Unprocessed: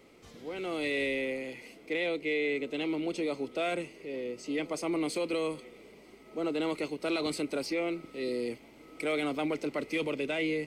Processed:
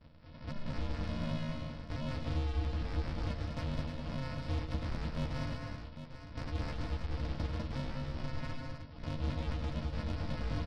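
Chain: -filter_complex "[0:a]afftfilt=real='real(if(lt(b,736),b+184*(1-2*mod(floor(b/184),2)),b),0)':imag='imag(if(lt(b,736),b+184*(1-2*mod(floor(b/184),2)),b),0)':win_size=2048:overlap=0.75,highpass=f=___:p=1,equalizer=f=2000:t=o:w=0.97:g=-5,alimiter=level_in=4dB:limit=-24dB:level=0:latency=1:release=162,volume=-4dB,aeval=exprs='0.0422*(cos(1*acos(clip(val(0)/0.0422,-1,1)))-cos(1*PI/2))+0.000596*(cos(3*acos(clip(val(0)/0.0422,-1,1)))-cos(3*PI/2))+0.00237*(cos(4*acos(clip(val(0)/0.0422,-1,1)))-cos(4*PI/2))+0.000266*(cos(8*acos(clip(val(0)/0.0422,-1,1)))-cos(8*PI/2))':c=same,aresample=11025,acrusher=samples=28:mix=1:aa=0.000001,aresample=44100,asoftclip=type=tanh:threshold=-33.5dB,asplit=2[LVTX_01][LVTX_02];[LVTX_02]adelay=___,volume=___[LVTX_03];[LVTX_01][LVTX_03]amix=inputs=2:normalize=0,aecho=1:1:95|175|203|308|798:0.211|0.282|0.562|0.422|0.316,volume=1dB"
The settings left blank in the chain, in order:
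1200, 13, -4dB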